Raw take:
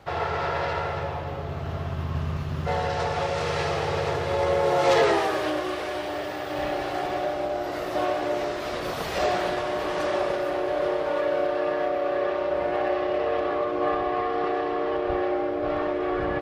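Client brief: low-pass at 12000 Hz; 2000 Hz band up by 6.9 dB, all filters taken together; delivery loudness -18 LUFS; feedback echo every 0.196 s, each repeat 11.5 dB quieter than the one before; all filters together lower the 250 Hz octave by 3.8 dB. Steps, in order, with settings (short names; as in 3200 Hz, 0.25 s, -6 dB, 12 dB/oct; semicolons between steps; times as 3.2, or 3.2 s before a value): LPF 12000 Hz; bell 250 Hz -7 dB; bell 2000 Hz +8.5 dB; feedback echo 0.196 s, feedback 27%, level -11.5 dB; gain +7 dB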